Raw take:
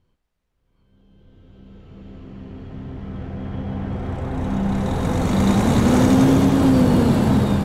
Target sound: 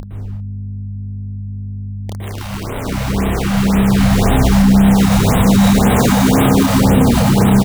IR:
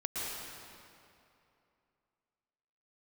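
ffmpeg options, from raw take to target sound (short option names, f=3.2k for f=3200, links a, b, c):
-filter_complex "[0:a]asettb=1/sr,asplit=3[a][b][c];[a]atrim=end=5.634[d];[b]atrim=start=5.63:end=6.64,asetpts=PTS-STARTPTS,afade=t=in:d=0.004:c=qsin,afade=t=out:st=1.006:d=0.004:c=qsin,lowshelf=f=160:g=-5[e];[c]atrim=start=6.636[f];[d][e]acrossfade=d=0.004:c1=hsin:c2=qsin[g];[g][f]acrossfade=d=0.004:c1=qsin:c2=hsin,aecho=1:1:180|360|540|720|900:0.106|0.0593|0.0332|0.0186|0.0104,adynamicequalizer=threshold=0.0282:dfrequency=300:dqfactor=0.93:tfrequency=300:tqfactor=0.93:attack=5:release=100:ratio=0.375:range=2.5:mode=cutabove:tftype=bell,asettb=1/sr,asplit=3[h][i][j];[h]atrim=end=3.984[k];[i]atrim=start=3.98:end=4.7,asetpts=PTS-STARTPTS,afade=t=in:d=0.004:c=qsin,afade=t=out:st=0.716:d=0.004:c=qsin,acontrast=25[l];[j]atrim=start=4.696[m];[k][l]acrossfade=d=0.004:c1=hsin:c2=qsin[n];[n][m]acrossfade=d=0.004:c1=qsin:c2=hsin,acrusher=bits=4:mix=0:aa=0.000001,aeval=exprs='val(0)+0.0126*(sin(2*PI*50*n/s)+sin(2*PI*2*50*n/s)/2+sin(2*PI*3*50*n/s)/3+sin(2*PI*4*50*n/s)/4+sin(2*PI*5*50*n/s)/5)':c=same,acompressor=mode=upward:threshold=-27dB:ratio=2.5,asplit=2[o][p];[p]adelay=30,volume=-3dB[q];[o][q]amix=inputs=2:normalize=0[r];[1:a]atrim=start_sample=2205,afade=t=out:st=0.42:d=0.01,atrim=end_sample=18963[s];[r][s]afir=irnorm=-1:irlink=0,alimiter=level_in=8dB:limit=-1dB:release=50:level=0:latency=1,afftfilt=real='re*(1-between(b*sr/1024,330*pow(5700/330,0.5+0.5*sin(2*PI*1.9*pts/sr))/1.41,330*pow(5700/330,0.5+0.5*sin(2*PI*1.9*pts/sr))*1.41))':imag='im*(1-between(b*sr/1024,330*pow(5700/330,0.5+0.5*sin(2*PI*1.9*pts/sr))/1.41,330*pow(5700/330,0.5+0.5*sin(2*PI*1.9*pts/sr))*1.41))':win_size=1024:overlap=0.75,volume=-1.5dB"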